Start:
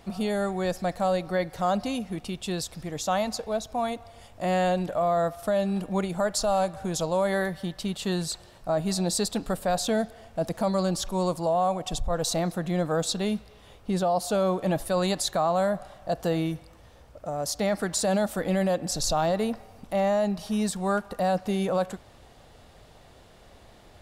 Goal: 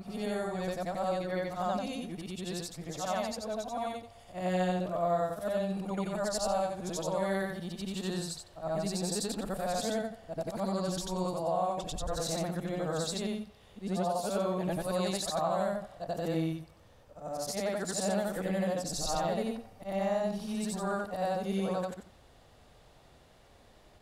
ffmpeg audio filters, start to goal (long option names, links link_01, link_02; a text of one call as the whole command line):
ffmpeg -i in.wav -af "afftfilt=real='re':imag='-im':win_size=8192:overlap=0.75,volume=-2dB" out.wav